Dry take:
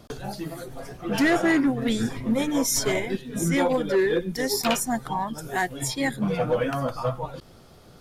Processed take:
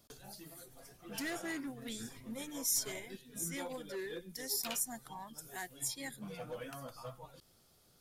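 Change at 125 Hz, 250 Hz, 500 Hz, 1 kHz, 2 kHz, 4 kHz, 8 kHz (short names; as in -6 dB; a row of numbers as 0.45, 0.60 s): -21.0, -21.0, -20.5, -20.0, -17.0, -12.0, -7.5 dB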